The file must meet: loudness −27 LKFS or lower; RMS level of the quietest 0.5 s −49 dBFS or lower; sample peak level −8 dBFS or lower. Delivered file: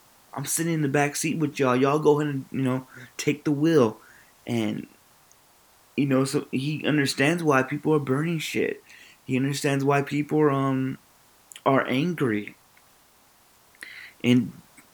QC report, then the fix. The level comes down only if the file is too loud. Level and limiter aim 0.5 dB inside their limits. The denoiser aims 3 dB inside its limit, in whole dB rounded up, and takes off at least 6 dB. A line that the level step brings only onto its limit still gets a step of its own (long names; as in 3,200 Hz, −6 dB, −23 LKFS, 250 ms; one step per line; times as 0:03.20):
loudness −24.5 LKFS: out of spec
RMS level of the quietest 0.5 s −58 dBFS: in spec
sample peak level −6.0 dBFS: out of spec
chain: level −3 dB